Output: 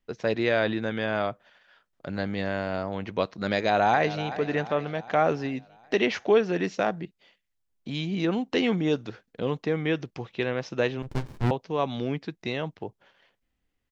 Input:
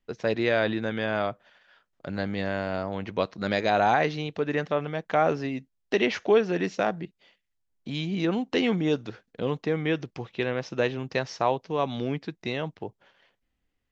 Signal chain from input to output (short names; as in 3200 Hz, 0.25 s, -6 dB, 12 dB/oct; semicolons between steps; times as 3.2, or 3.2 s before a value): 3.55–4.24 echo throw 0.38 s, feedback 55%, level -13.5 dB; 11.02–11.51 running maximum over 65 samples